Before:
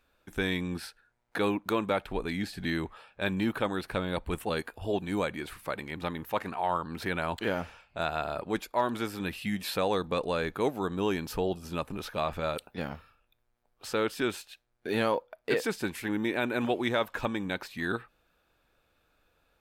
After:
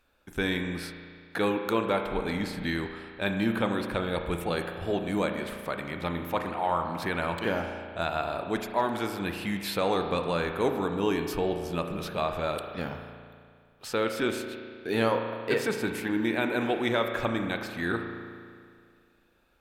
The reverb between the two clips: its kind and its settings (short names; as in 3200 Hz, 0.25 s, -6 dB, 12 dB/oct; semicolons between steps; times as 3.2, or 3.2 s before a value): spring tank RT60 2.1 s, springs 35 ms, chirp 40 ms, DRR 5 dB; gain +1 dB